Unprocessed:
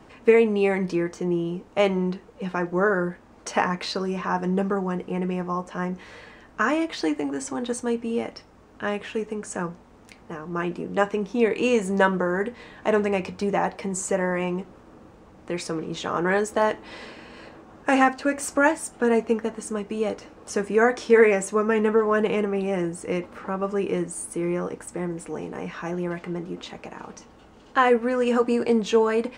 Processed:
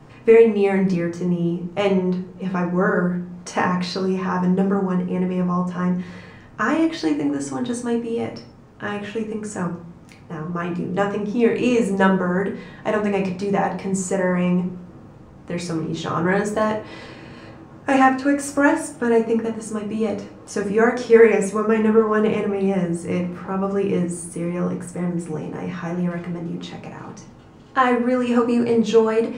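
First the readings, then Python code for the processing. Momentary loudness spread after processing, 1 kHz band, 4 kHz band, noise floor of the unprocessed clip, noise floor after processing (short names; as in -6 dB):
13 LU, +2.5 dB, +1.0 dB, -51 dBFS, -44 dBFS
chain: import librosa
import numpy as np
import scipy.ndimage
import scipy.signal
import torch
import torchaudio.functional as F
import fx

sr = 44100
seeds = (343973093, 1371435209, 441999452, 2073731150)

y = fx.peak_eq(x, sr, hz=130.0, db=12.0, octaves=0.87)
y = fx.room_shoebox(y, sr, seeds[0], volume_m3=47.0, walls='mixed', distance_m=0.53)
y = y * librosa.db_to_amplitude(-1.0)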